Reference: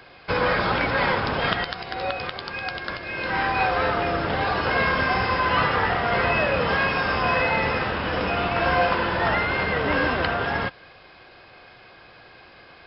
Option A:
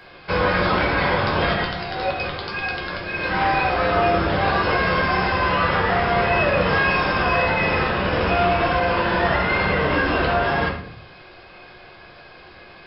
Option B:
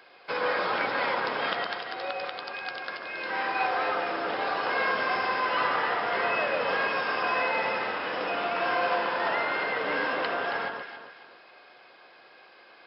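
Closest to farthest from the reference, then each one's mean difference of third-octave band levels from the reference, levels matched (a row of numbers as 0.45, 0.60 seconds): A, B; 2.0, 3.5 decibels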